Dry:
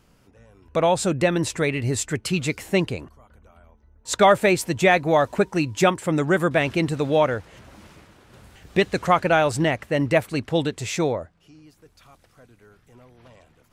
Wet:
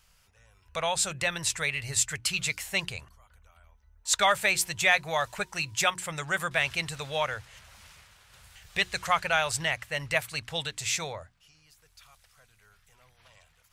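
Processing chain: amplifier tone stack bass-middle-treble 10-0-10; hum notches 60/120/180/240/300/360 Hz; trim +3 dB

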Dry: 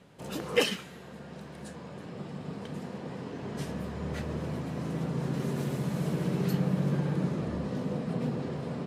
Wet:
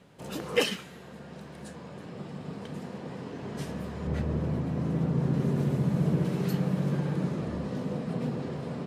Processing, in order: 4.07–6.25 s: tilt EQ -2 dB/octave

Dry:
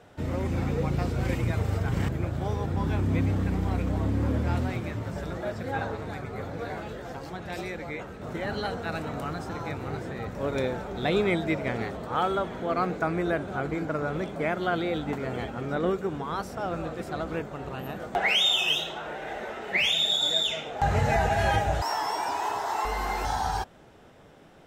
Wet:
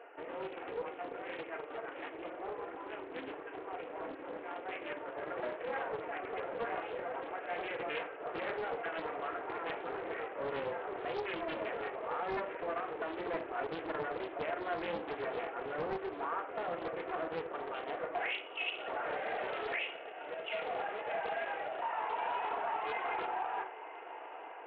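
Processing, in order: hum notches 50/100/150/200/250/300/350/400/450 Hz; reverb removal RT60 1 s; peak limiter -23.5 dBFS, peak gain reduction 9 dB; compression, threshold -33 dBFS, peak gain reduction 6 dB; saturation -33 dBFS, distortion -16 dB; brick-wall FIR band-pass 290–3000 Hz; on a send: echo that smears into a reverb 905 ms, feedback 75%, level -14.5 dB; on the sum: simulated room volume 810 m³, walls furnished, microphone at 1.7 m; loudspeaker Doppler distortion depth 0.47 ms; trim +1 dB

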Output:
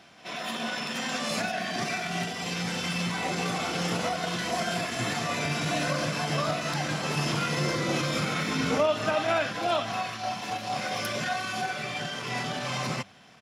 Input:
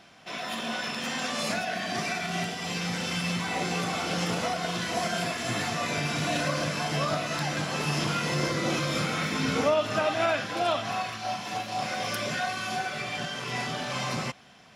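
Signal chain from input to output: high-pass 74 Hz 12 dB/octave; bass shelf 120 Hz +2.5 dB; de-hum 98.91 Hz, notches 2; tempo 1.1×; pre-echo 77 ms -18 dB

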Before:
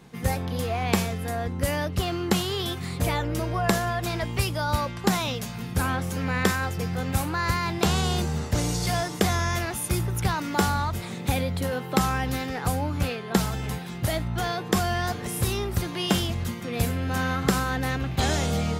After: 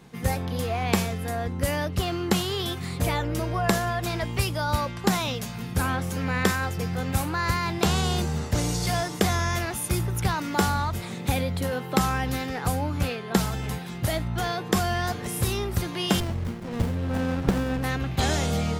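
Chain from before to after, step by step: 16.20–17.84 s: sliding maximum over 33 samples

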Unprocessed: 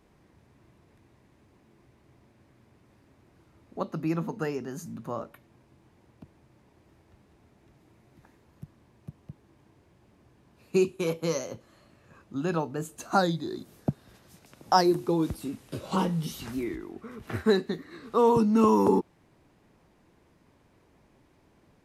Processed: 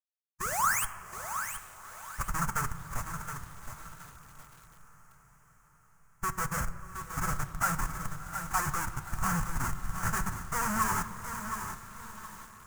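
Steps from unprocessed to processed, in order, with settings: peaking EQ 1.6 kHz +12 dB 2.5 oct; rotary cabinet horn 0.65 Hz, later 7 Hz, at 15.22 s; high-pass 100 Hz 6 dB/octave; painted sound rise, 0.69–1.47 s, 330–3400 Hz -31 dBFS; Schmitt trigger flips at -28.5 dBFS; time stretch by phase-locked vocoder 0.58×; FFT filter 160 Hz 0 dB, 300 Hz -18 dB, 450 Hz -18 dB, 1.3 kHz +9 dB, 3.8 kHz -17 dB, 6.7 kHz +8 dB, 11 kHz +5 dB; echo that smears into a reverb 698 ms, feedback 56%, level -14 dB; reverberation RT60 1.6 s, pre-delay 4 ms, DRR 7.5 dB; bit-crushed delay 719 ms, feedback 35%, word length 8-bit, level -8 dB; trim +1.5 dB

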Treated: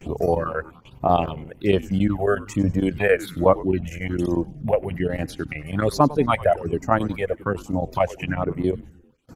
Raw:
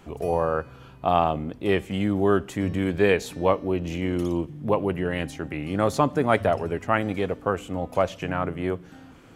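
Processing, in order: square tremolo 11 Hz, depth 60%, duty 85%; reverb removal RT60 1.3 s; in parallel at +0.5 dB: compression 6:1, threshold -39 dBFS, peak gain reduction 22 dB; on the sum: phase shifter stages 6, 1.2 Hz, lowest notch 250–3300 Hz; gate with hold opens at -41 dBFS; on a send: frequency-shifting echo 98 ms, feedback 49%, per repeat -150 Hz, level -18 dB; on the sum: trim +4.5 dB

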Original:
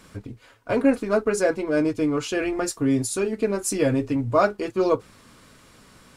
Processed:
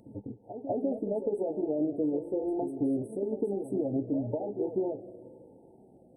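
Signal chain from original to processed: coarse spectral quantiser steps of 15 dB; high-pass 420 Hz 6 dB/octave; peaking EQ 5.4 kHz -6 dB 0.77 oct; in parallel at 0 dB: level held to a coarse grid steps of 9 dB; on the sum: peak limiter -14 dBFS, peak gain reduction 10.5 dB; compression, threshold -25 dBFS, peak gain reduction 7 dB; brick-wall FIR band-stop 920–7800 Hz; distance through air 260 m; reverse echo 197 ms -9.5 dB; on a send at -18 dB: reverberation RT60 3.0 s, pre-delay 110 ms; on the sum: Shepard-style phaser falling 0.96 Hz

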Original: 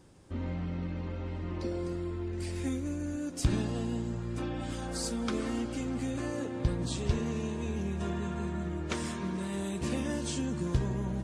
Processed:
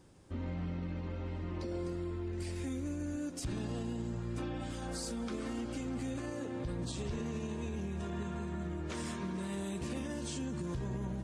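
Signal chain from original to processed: peak limiter -27.5 dBFS, peak gain reduction 10.5 dB; trim -2.5 dB

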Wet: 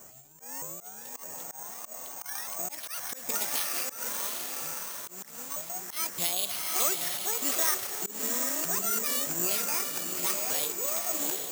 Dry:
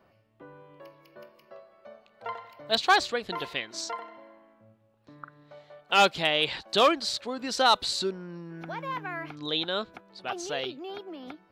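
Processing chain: sawtooth pitch modulation +11.5 st, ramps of 618 ms; dynamic bell 810 Hz, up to -4 dB, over -42 dBFS; in parallel at 0 dB: peak limiter -20 dBFS, peak gain reduction 9 dB; on the sum: compression 3:1, threshold -38 dBFS, peak gain reduction 17.5 dB; Savitzky-Golay filter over 15 samples; on a send: echo that smears into a reverb 779 ms, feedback 43%, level -3.5 dB; on the sum: slow attack 172 ms; careless resampling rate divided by 6×, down none, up zero stuff

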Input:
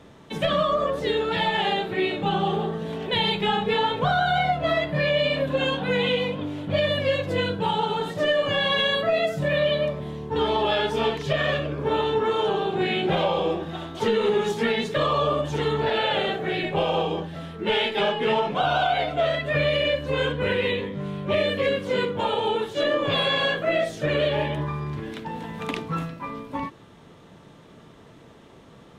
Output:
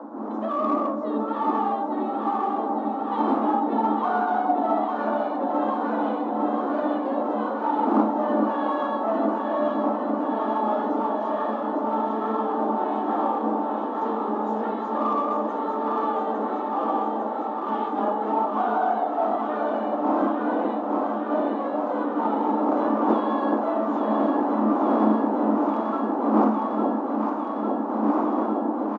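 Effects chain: octave divider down 1 oct, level +3 dB; wind noise 280 Hz -19 dBFS; resonant high shelf 1.7 kHz -11.5 dB, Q 3; in parallel at -7 dB: hard clipper -17 dBFS, distortion -5 dB; on the sum: rippled Chebyshev high-pass 210 Hz, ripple 9 dB; echo whose repeats swap between lows and highs 427 ms, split 850 Hz, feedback 89%, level -3.5 dB; on a send at -13 dB: reverberation, pre-delay 4 ms; on the sum: resampled via 16 kHz; trim -6 dB

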